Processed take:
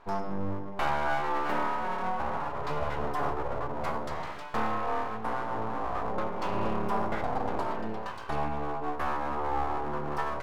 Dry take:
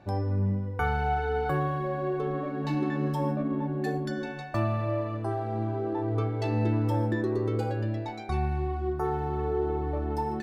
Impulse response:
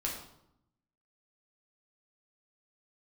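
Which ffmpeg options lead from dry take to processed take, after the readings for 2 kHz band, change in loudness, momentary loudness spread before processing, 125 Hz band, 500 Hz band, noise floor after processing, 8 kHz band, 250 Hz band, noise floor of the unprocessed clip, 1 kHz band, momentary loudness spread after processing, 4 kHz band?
+1.5 dB, -3.0 dB, 4 LU, -12.5 dB, -3.5 dB, -37 dBFS, no reading, -7.0 dB, -36 dBFS, +3.0 dB, 5 LU, +2.5 dB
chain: -af "aeval=exprs='abs(val(0))':c=same,equalizer=f=980:t=o:w=1.1:g=10,volume=0.708"

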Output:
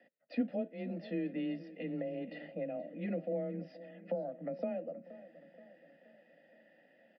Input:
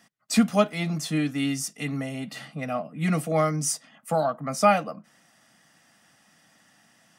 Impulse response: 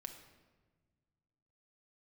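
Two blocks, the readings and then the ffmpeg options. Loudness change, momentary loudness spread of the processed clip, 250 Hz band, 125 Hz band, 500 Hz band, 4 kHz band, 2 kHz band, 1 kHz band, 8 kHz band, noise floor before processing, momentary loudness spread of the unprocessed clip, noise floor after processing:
-13.5 dB, 17 LU, -11.5 dB, -17.0 dB, -11.0 dB, under -20 dB, -19.0 dB, -25.0 dB, under -40 dB, -62 dBFS, 12 LU, -67 dBFS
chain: -filter_complex "[0:a]asplit=2[s0][s1];[s1]acompressor=threshold=0.0224:ratio=6,volume=1[s2];[s0][s2]amix=inputs=2:normalize=0,asplit=3[s3][s4][s5];[s3]bandpass=f=530:t=q:w=8,volume=1[s6];[s4]bandpass=f=1840:t=q:w=8,volume=0.501[s7];[s5]bandpass=f=2480:t=q:w=8,volume=0.355[s8];[s6][s7][s8]amix=inputs=3:normalize=0,acrossover=split=310[s9][s10];[s10]acompressor=threshold=0.00631:ratio=10[s11];[s9][s11]amix=inputs=2:normalize=0,afreqshift=21,tiltshelf=f=970:g=8.5,asplit=2[s12][s13];[s13]adelay=475,lowpass=f=3300:p=1,volume=0.158,asplit=2[s14][s15];[s15]adelay=475,lowpass=f=3300:p=1,volume=0.54,asplit=2[s16][s17];[s17]adelay=475,lowpass=f=3300:p=1,volume=0.54,asplit=2[s18][s19];[s19]adelay=475,lowpass=f=3300:p=1,volume=0.54,asplit=2[s20][s21];[s21]adelay=475,lowpass=f=3300:p=1,volume=0.54[s22];[s12][s14][s16][s18][s20][s22]amix=inputs=6:normalize=0,aresample=11025,aresample=44100,volume=1.19"

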